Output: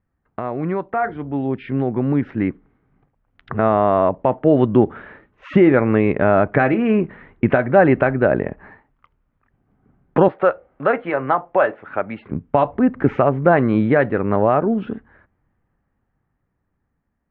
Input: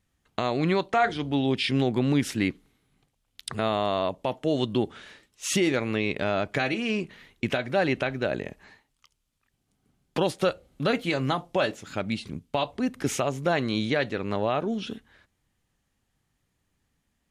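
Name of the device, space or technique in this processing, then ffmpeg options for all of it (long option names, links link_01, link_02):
action camera in a waterproof case: -filter_complex "[0:a]asettb=1/sr,asplit=3[link_01][link_02][link_03];[link_01]atrim=end=10.284[link_04];[link_02]atrim=start=10.28:end=12.32,asetpts=PTS-STARTPTS,afade=type=in:duration=0.004:curve=qsin,afade=type=out:start_time=2.036:duration=0.004:curve=qsin,acrossover=split=430 4100:gain=0.178 1 0.0708[link_05][link_06][link_07];[link_05][link_06][link_07]amix=inputs=3:normalize=0[link_08];[link_03]atrim=start=12.316[link_09];[link_04][link_08]acrossfade=duration=0.004:curve1=hsin:curve2=qsin[link_10];[link_10][link_09]acrossfade=duration=0.004:curve1=qsin:curve2=hsin,lowpass=frequency=1700:width=0.5412,lowpass=frequency=1700:width=1.3066,dynaudnorm=framelen=630:gausssize=9:maxgain=11.5dB,volume=1.5dB" -ar 24000 -c:a aac -b:a 96k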